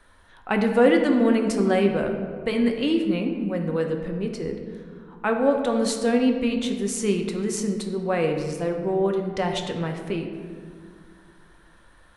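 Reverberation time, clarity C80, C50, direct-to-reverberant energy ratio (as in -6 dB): 2.0 s, 7.0 dB, 5.5 dB, 3.0 dB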